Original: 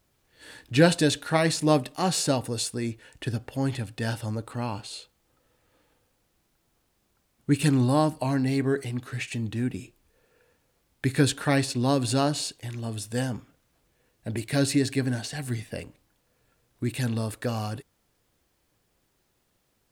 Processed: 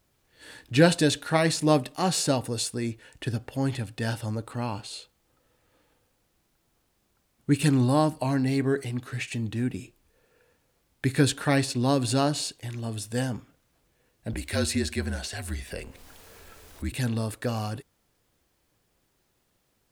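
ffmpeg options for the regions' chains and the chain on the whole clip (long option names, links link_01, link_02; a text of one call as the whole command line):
ffmpeg -i in.wav -filter_complex "[0:a]asettb=1/sr,asplit=3[link_01][link_02][link_03];[link_01]atrim=end=14.334[link_04];[link_02]atrim=start=14.33:end=16.92,asetpts=PTS-STARTPTS,afade=type=in:duration=0.004:curve=qsin,afade=type=out:start_time=2.586:duration=0.004:curve=qsin,equalizer=frequency=220:width=1.1:gain=-6.5,acompressor=mode=upward:threshold=-31dB:ratio=2.5:attack=3.2:release=140:knee=2.83:detection=peak,afreqshift=-43[link_05];[link_03]atrim=start=16.916[link_06];[link_04][link_05]acrossfade=duration=0.004:curve1=hsin:curve2=qsin[link_07];[link_07][link_06]acrossfade=duration=0.004:curve1=qsin:curve2=hsin" out.wav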